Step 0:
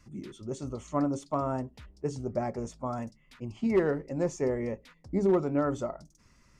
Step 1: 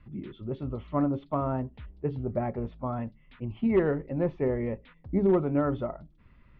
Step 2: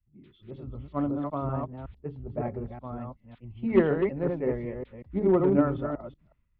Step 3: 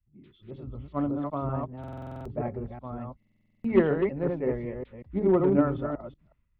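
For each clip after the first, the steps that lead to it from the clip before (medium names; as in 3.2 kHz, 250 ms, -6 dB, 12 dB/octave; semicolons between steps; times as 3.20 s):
steep low-pass 3.6 kHz 48 dB/octave; bass shelf 160 Hz +7.5 dB
chunks repeated in reverse 186 ms, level -2 dB; three bands expanded up and down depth 100%; trim -3 dB
buffer glitch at 1.79/3.18 s, samples 2048, times 9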